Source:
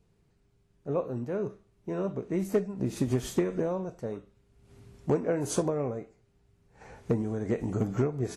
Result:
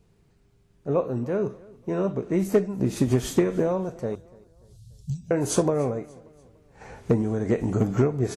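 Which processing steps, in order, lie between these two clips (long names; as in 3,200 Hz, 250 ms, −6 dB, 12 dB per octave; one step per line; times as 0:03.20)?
0:04.15–0:05.31: inverse Chebyshev band-stop filter 270–2,100 Hz, stop band 40 dB
on a send: repeating echo 291 ms, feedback 42%, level −23 dB
on the sum: level +6 dB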